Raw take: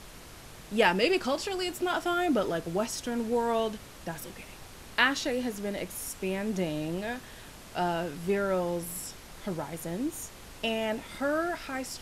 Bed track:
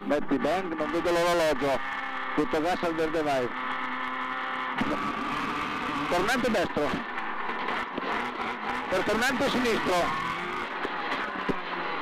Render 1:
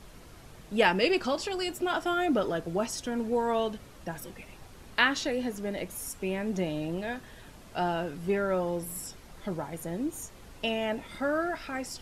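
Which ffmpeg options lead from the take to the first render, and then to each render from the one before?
-af "afftdn=nr=7:nf=-48"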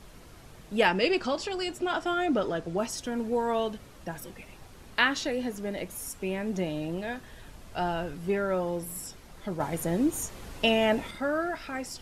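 -filter_complex "[0:a]asettb=1/sr,asplit=3[a][b][c];[a]atrim=end=0.884[d];[b]atrim=start=0.88:end=2.78,asetpts=PTS-STARTPTS,afade=t=in:d=0.004:c=qsin,afade=t=out:st=1.896:d=0.004:c=qsin,lowpass=8.7k[e];[c]atrim=start=2.776[f];[d][e]acrossfade=d=0.004:c1=hsin:c2=qsin[g];[g][f]acrossfade=d=0.004:c1=qsin:c2=hsin,asettb=1/sr,asplit=3[h][i][j];[h]atrim=end=7.114[k];[i]atrim=start=7.11:end=8.14,asetpts=PTS-STARTPTS,afade=t=in:d=0.004:c=qsin,afade=t=out:st=1.026:d=0.004:c=qsin,asubboost=boost=7.5:cutoff=120[l];[j]atrim=start=8.136[m];[k][l]acrossfade=d=0.004:c1=hsin:c2=qsin[n];[n][m]acrossfade=d=0.004:c1=qsin:c2=hsin,asettb=1/sr,asplit=3[o][p][q];[o]atrim=end=9.604[r];[p]atrim=start=9.6:end=11.11,asetpts=PTS-STARTPTS,afade=t=in:d=0.004:c=qsin,afade=t=out:st=1.506:d=0.004:c=qsin,acontrast=71[s];[q]atrim=start=11.106[t];[r][s]acrossfade=d=0.004:c1=hsin:c2=qsin[u];[u][t]acrossfade=d=0.004:c1=qsin:c2=hsin"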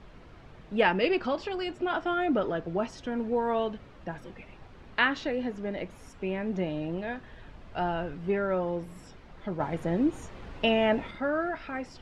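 -af "lowpass=2.9k"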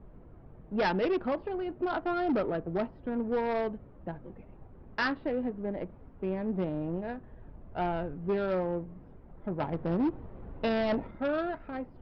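-af "adynamicsmooth=sensitivity=1:basefreq=780,aresample=11025,asoftclip=type=hard:threshold=-24dB,aresample=44100"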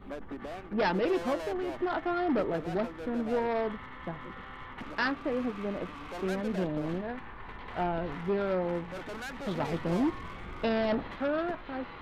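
-filter_complex "[1:a]volume=-14.5dB[a];[0:a][a]amix=inputs=2:normalize=0"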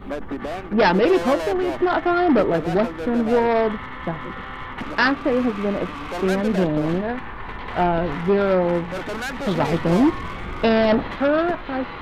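-af "volume=11.5dB"

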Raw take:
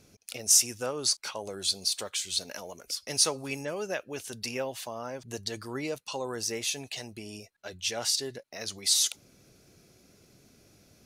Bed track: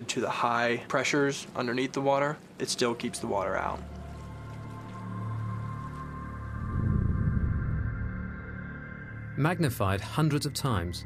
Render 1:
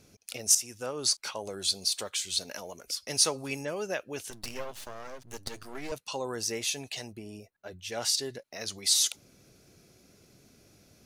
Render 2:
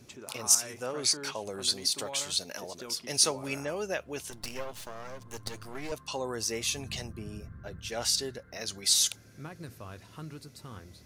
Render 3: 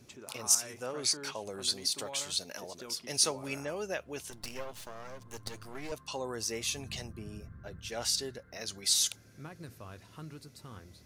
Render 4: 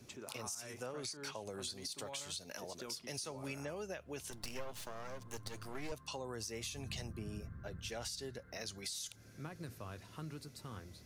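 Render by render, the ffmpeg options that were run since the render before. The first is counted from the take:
-filter_complex "[0:a]asettb=1/sr,asplit=3[a][b][c];[a]atrim=end=4.304[d];[b]atrim=start=4.3:end=5.92,asetpts=PTS-STARTPTS,afade=t=in:d=0.004:c=qsin,afade=t=out:st=1.616:d=0.004:c=qsin,aeval=exprs='max(val(0),0)':c=same[e];[c]atrim=start=5.916[f];[d][e]acrossfade=d=0.004:c1=hsin:c2=qsin[g];[g][f]acrossfade=d=0.004:c1=qsin:c2=hsin,asplit=3[h][i][j];[h]afade=t=out:st=7.11:d=0.02[k];[i]equalizer=f=5.3k:w=0.38:g=-11,afade=t=in:st=7.11:d=0.02,afade=t=out:st=7.91:d=0.02[l];[j]afade=t=in:st=7.91:d=0.02[m];[k][l][m]amix=inputs=3:normalize=0,asplit=2[n][o];[n]atrim=end=0.55,asetpts=PTS-STARTPTS,afade=t=out:st=0.546:d=0.004:c=hsin:silence=0.251189[p];[o]atrim=start=0.55,asetpts=PTS-STARTPTS,afade=t=in:d=0.52:silence=0.251189[q];[p][q]concat=n=2:v=0:a=1"
-filter_complex "[1:a]volume=-17dB[a];[0:a][a]amix=inputs=2:normalize=0"
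-af "volume=-3dB"
-filter_complex "[0:a]alimiter=level_in=0.5dB:limit=-24dB:level=0:latency=1:release=90,volume=-0.5dB,acrossover=split=150[a][b];[b]acompressor=threshold=-42dB:ratio=4[c];[a][c]amix=inputs=2:normalize=0"

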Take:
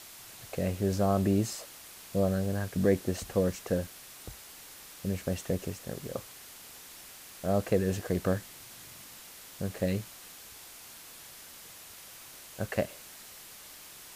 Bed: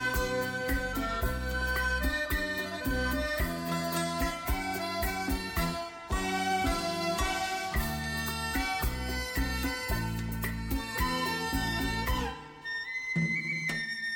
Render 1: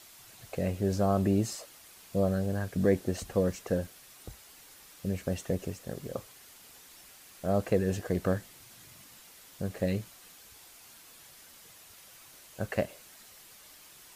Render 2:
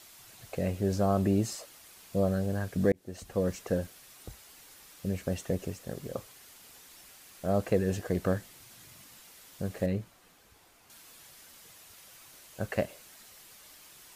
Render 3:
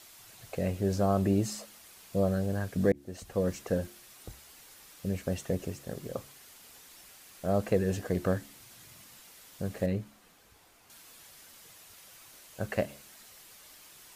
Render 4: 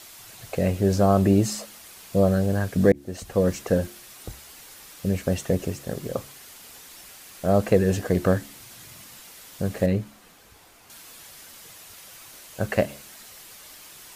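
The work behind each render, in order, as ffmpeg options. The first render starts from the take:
-af "afftdn=nr=6:nf=-50"
-filter_complex "[0:a]asettb=1/sr,asplit=3[a][b][c];[a]atrim=end=9.864[d];[b]atrim=start=9.86:end=10.9,asetpts=PTS-STARTPTS,afade=t=in:d=0.004:c=qsin,afade=t=out:st=1.036:d=0.004:c=qsin,highshelf=f=2.3k:g=-11[e];[c]atrim=start=10.896[f];[d][e]acrossfade=d=0.004:c1=hsin:c2=qsin[g];[g][f]acrossfade=d=0.004:c1=qsin:c2=hsin,asplit=2[h][i];[h]atrim=end=2.92,asetpts=PTS-STARTPTS,afade=t=out:st=2.916:d=0.004:c=hsin[j];[i]atrim=start=2.92,asetpts=PTS-STARTPTS,afade=t=in:d=0.61[k];[j][k]concat=n=2:v=0:a=1"
-af "bandreject=f=70.62:t=h:w=4,bandreject=f=141.24:t=h:w=4,bandreject=f=211.86:t=h:w=4,bandreject=f=282.48:t=h:w=4,bandreject=f=353.1:t=h:w=4"
-af "volume=8dB"

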